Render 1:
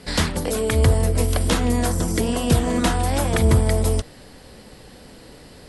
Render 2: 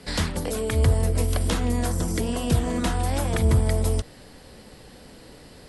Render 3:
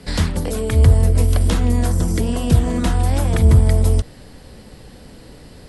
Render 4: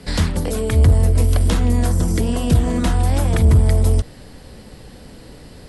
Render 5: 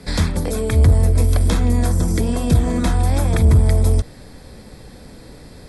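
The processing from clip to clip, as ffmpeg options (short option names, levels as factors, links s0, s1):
-filter_complex "[0:a]acrossover=split=160[s0][s1];[s1]acompressor=threshold=0.0447:ratio=1.5[s2];[s0][s2]amix=inputs=2:normalize=0,volume=0.75"
-af "lowshelf=f=220:g=7.5,volume=1.26"
-af "asoftclip=type=tanh:threshold=0.531,volume=1.12"
-af "asuperstop=centerf=2900:order=4:qfactor=7.8"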